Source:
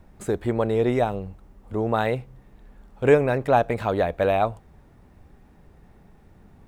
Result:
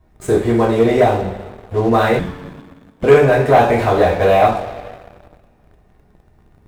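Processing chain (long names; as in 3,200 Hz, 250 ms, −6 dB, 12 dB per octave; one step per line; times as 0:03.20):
coupled-rooms reverb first 0.45 s, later 2.5 s, from −18 dB, DRR −7 dB
leveller curve on the samples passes 2
0:02.19–0:03.04: frequency shifter −310 Hz
level −5 dB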